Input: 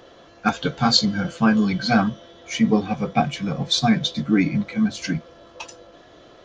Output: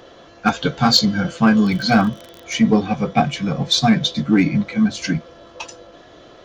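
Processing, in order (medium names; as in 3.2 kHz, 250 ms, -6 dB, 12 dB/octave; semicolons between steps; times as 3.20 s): 1.63–2.56 s: crackle 37 per s -29 dBFS; in parallel at -5 dB: hard clipper -13.5 dBFS, distortion -15 dB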